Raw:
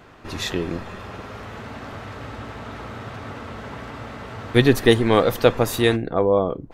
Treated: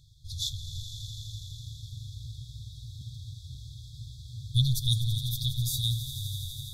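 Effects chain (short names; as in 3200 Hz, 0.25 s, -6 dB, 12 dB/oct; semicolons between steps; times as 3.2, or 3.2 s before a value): FFT band-reject 150–3300 Hz; on a send: swelling echo 83 ms, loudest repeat 5, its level -14 dB; 3.01–3.55 on the sum: three-band squash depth 40%; gain -2.5 dB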